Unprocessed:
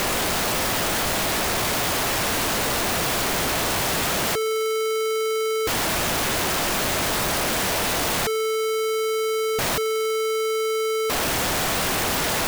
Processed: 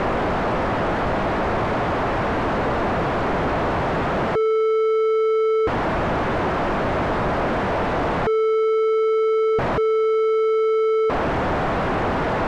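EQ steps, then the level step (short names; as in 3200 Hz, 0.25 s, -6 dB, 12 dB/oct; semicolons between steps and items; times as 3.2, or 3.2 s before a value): LPF 1300 Hz 12 dB/oct; +5.5 dB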